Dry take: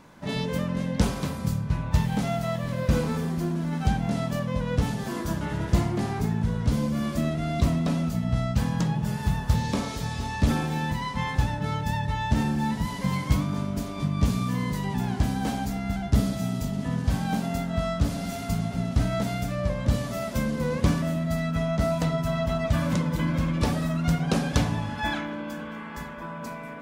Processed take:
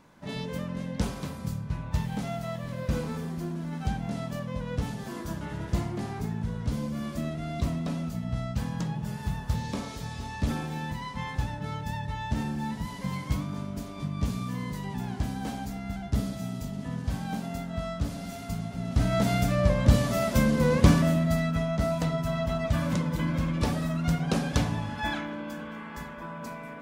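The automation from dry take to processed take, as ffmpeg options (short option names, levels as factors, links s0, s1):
-af "volume=1.58,afade=t=in:st=18.8:d=0.55:silence=0.316228,afade=t=out:st=21.02:d=0.65:silence=0.473151"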